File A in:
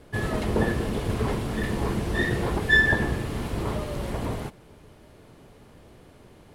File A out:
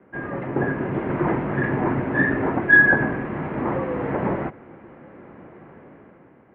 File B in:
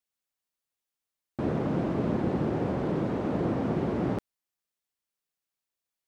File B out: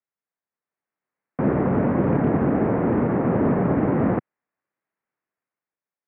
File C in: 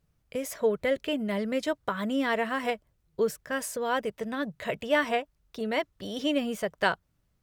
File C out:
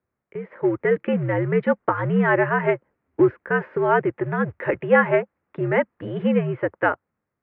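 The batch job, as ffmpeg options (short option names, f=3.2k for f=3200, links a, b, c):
-af "dynaudnorm=f=180:g=9:m=10dB,acrusher=bits=5:mode=log:mix=0:aa=0.000001,highpass=f=220:t=q:w=0.5412,highpass=f=220:t=q:w=1.307,lowpass=f=2.2k:t=q:w=0.5176,lowpass=f=2.2k:t=q:w=0.7071,lowpass=f=2.2k:t=q:w=1.932,afreqshift=-81"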